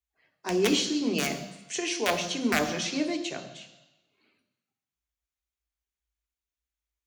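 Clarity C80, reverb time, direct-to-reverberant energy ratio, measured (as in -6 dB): 12.0 dB, 1.0 s, 5.5 dB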